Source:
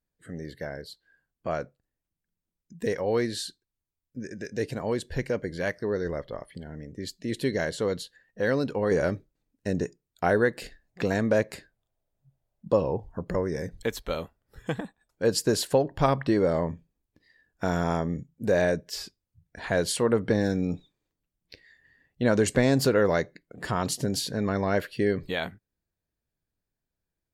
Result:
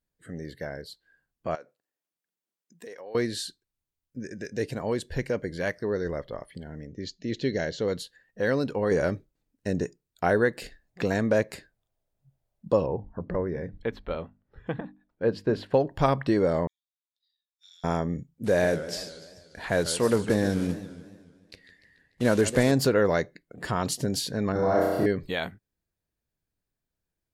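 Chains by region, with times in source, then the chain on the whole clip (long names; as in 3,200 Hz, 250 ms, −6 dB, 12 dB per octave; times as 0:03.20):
0:01.55–0:03.15: high-pass filter 380 Hz + downward compressor 2.5 to 1, threshold −45 dBFS
0:06.87–0:07.88: Chebyshev low-pass filter 6,600 Hz, order 5 + parametric band 1,100 Hz −8.5 dB 0.53 octaves
0:12.86–0:15.74: high-frequency loss of the air 380 metres + mains-hum notches 50/100/150/200/250/300 Hz
0:16.67–0:17.84: four-pole ladder band-pass 3,800 Hz, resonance 85% + first difference
0:18.44–0:22.72: one scale factor per block 5 bits + Butterworth low-pass 12,000 Hz 48 dB per octave + feedback echo with a swinging delay time 146 ms, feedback 56%, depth 220 cents, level −13 dB
0:24.52–0:25.06: parametric band 2,600 Hz −14 dB 1.5 octaves + comb filter 6.3 ms, depth 35% + flutter between parallel walls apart 5.6 metres, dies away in 1.5 s
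whole clip: no processing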